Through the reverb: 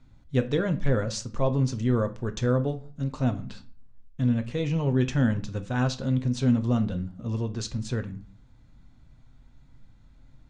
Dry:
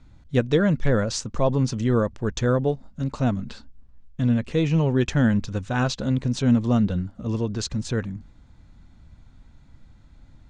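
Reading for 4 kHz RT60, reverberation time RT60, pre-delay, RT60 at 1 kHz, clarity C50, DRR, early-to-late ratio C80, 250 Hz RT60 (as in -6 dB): 0.30 s, 0.40 s, 8 ms, 0.40 s, 16.5 dB, 8.0 dB, 21.5 dB, 0.50 s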